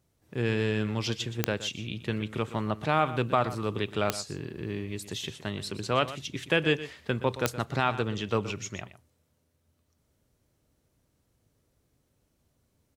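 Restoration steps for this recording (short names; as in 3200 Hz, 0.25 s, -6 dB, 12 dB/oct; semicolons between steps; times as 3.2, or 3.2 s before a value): de-click; inverse comb 0.121 s -14.5 dB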